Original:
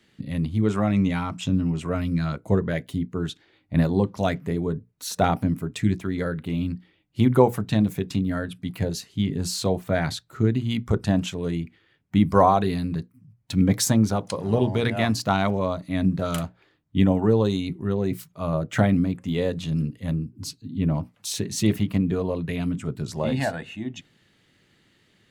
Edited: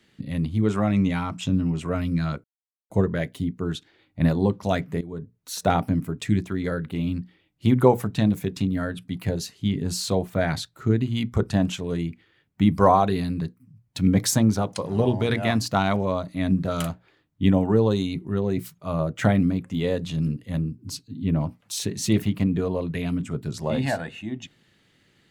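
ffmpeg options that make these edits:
-filter_complex "[0:a]asplit=3[a][b][c];[a]atrim=end=2.44,asetpts=PTS-STARTPTS,afade=t=out:st=2.436:d=0.004:c=hsin,apad=pad_dur=0.46[d];[b]atrim=start=2.44:end=4.55,asetpts=PTS-STARTPTS,afade=t=in:d=0.004:c=hsin,afade=t=out:st=2.106:d=0.004:c=hsin:silence=0.177828[e];[c]atrim=start=4.55,asetpts=PTS-STARTPTS,afade=t=in:d=0.78:c=qsin:silence=0.177828[f];[d][e][f]concat=n=3:v=0:a=1"

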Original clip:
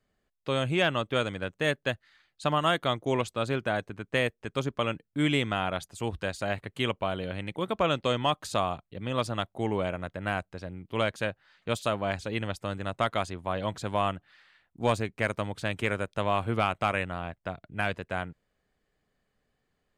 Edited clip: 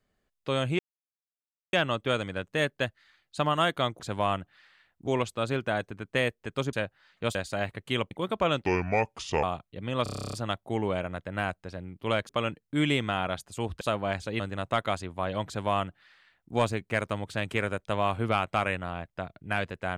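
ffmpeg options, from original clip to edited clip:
-filter_complex "[0:a]asplit=22[a][b][c][d][e][f][g][h][i][j][k][l][m][n][o][p][q][r][s][t][u][v];[a]atrim=end=0.79,asetpts=PTS-STARTPTS,afade=t=out:st=0.786:d=0.004:c=hsin,apad=pad_dur=0.94[w];[b]atrim=start=0.79:end=3.062,asetpts=PTS-STARTPTS,afade=t=in:d=0.004:c=hsin[x];[c]atrim=start=13.748:end=14.822[y];[d]atrim=start=3.058:end=4.722[z];[e]atrim=start=11.178:end=11.802[aa];[f]atrim=start=6.238:end=7.002[ab];[g]atrim=start=7.498:end=8.054[ac];[h]atrim=start=8.05:end=8.62,asetpts=PTS-STARTPTS,asetrate=32634,aresample=44100[ad];[i]atrim=start=8.616:end=9.252[ae];[j]atrim=start=9.218:end=9.252[af];[k]atrim=start=9.218:end=9.252[ag];[l]atrim=start=9.218:end=9.252[ah];[m]atrim=start=9.218:end=9.252[ai];[n]atrim=start=9.218:end=9.252[aj];[o]atrim=start=9.218:end=9.252[ak];[p]atrim=start=9.218:end=9.252[al];[q]atrim=start=9.218:end=9.252[am];[r]atrim=start=9.218:end=9.252[an];[s]atrim=start=9.218:end=11.182[ao];[t]atrim=start=4.718:end=6.242[ap];[u]atrim=start=11.798:end=12.392[aq];[v]atrim=start=12.678[ar];[w][x]concat=n=2:v=0:a=1[as];[as][y]acrossfade=d=0.004:c1=hsin:c2=hsin[at];[at][z]acrossfade=d=0.004:c1=hsin:c2=hsin[au];[au][aa]acrossfade=d=0.004:c1=hsin:c2=hsin[av];[av][ab]acrossfade=d=0.004:c1=hsin:c2=hsin[aw];[aw][ac]acrossfade=d=0.004:c1=hsin:c2=hsin[ax];[ax][ad]acrossfade=d=0.004:c1=hsin:c2=hsin[ay];[ay][ae]acrossfade=d=0.004:c1=hsin:c2=hsin[az];[az][af]acrossfade=d=0.004:c1=hsin:c2=hsin[ba];[ba][ag]acrossfade=d=0.004:c1=hsin:c2=hsin[bb];[bb][ah]acrossfade=d=0.004:c1=hsin:c2=hsin[bc];[bc][ai]acrossfade=d=0.004:c1=hsin:c2=hsin[bd];[bd][aj]acrossfade=d=0.004:c1=hsin:c2=hsin[be];[be][ak]acrossfade=d=0.004:c1=hsin:c2=hsin[bf];[bf][al]acrossfade=d=0.004:c1=hsin:c2=hsin[bg];[bg][am]acrossfade=d=0.004:c1=hsin:c2=hsin[bh];[bh][an]acrossfade=d=0.004:c1=hsin:c2=hsin[bi];[bi][ao]acrossfade=d=0.004:c1=hsin:c2=hsin[bj];[bj][ap]acrossfade=d=0.004:c1=hsin:c2=hsin[bk];[bk][aq]acrossfade=d=0.004:c1=hsin:c2=hsin[bl];[bl][ar]acrossfade=d=0.004:c1=hsin:c2=hsin"

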